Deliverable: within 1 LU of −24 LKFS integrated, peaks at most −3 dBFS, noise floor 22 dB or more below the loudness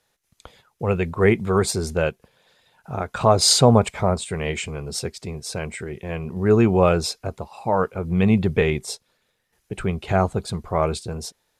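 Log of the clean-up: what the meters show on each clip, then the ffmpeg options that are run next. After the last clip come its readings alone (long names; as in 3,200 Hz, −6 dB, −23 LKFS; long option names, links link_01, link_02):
integrated loudness −21.5 LKFS; sample peak −2.5 dBFS; target loudness −24.0 LKFS
→ -af "volume=-2.5dB"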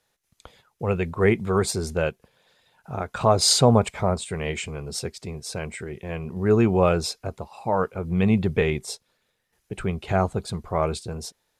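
integrated loudness −24.0 LKFS; sample peak −5.0 dBFS; background noise floor −73 dBFS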